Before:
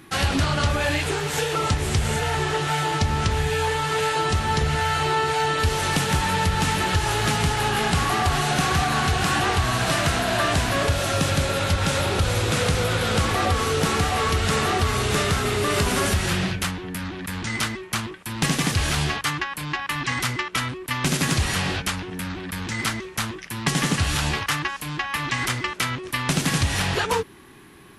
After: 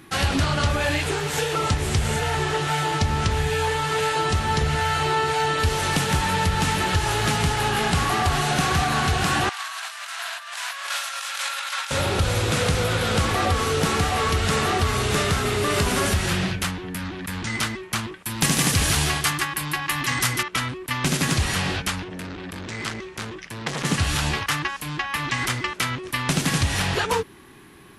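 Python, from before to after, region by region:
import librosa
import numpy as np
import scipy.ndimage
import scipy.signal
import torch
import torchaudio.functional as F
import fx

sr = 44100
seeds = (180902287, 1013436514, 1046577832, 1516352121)

y = fx.chain(x, sr, fx.highpass(hz=1000.0, slope=24),
    fx.over_compress(threshold_db=-30.0, ratio=-0.5), at=(9.49, 11.91))
y = fx.chain(y, sr, fx.high_shelf(hz=7700.0, db=11.5),
    fx.echo_single(ms=147, db=-7.0), at=(18.26, 20.43))
y = fx.chain(y, sr, fx.lowpass(hz=8100.0, slope=12),
    fx.transformer_sat(knee_hz=1300.0), at=(22.04, 23.85))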